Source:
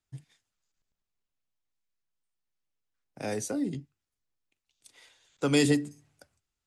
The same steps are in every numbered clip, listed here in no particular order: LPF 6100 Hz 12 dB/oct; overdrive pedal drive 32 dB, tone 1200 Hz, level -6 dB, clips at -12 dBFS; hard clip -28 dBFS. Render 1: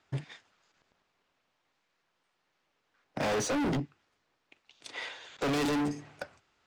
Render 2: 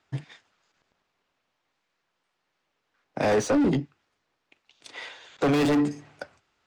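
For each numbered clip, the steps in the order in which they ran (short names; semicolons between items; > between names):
LPF > overdrive pedal > hard clip; LPF > hard clip > overdrive pedal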